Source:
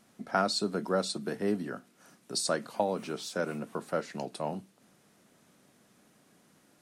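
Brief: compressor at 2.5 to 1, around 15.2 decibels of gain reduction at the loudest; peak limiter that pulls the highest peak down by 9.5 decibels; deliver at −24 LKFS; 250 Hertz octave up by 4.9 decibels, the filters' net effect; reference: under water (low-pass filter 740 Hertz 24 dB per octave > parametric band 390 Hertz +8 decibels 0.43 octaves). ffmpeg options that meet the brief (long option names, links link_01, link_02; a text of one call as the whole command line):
ffmpeg -i in.wav -af "equalizer=frequency=250:width_type=o:gain=4.5,acompressor=threshold=-46dB:ratio=2.5,alimiter=level_in=11dB:limit=-24dB:level=0:latency=1,volume=-11dB,lowpass=frequency=740:width=0.5412,lowpass=frequency=740:width=1.3066,equalizer=frequency=390:width_type=o:width=0.43:gain=8,volume=21.5dB" out.wav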